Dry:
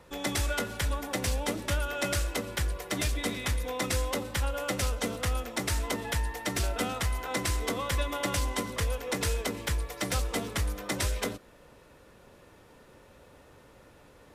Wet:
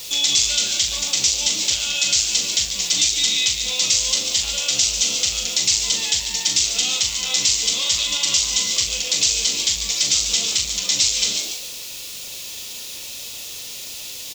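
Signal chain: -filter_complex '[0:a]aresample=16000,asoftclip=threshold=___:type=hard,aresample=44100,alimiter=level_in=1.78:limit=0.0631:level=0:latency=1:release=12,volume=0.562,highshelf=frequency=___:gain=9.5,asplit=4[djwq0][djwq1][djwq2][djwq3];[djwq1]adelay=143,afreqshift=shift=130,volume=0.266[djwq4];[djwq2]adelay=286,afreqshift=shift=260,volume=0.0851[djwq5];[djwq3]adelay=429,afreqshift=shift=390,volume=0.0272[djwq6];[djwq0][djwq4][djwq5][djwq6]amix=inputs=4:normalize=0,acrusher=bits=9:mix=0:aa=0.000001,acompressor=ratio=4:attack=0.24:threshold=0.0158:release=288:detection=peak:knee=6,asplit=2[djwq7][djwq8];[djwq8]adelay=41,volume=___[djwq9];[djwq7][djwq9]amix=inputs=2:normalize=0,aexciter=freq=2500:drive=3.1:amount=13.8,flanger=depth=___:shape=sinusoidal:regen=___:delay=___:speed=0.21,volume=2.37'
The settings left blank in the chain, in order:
0.0299, 2000, 0.501, 1.4, -70, 8.1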